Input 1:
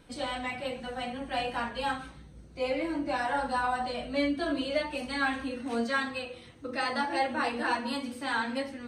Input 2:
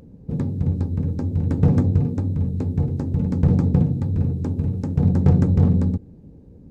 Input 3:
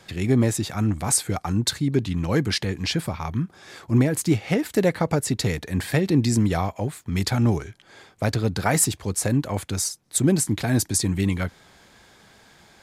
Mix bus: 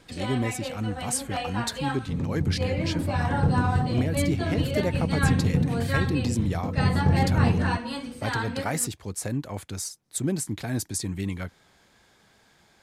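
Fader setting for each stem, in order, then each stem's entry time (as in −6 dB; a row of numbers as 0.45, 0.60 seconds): 0.0, −6.0, −7.5 decibels; 0.00, 1.80, 0.00 seconds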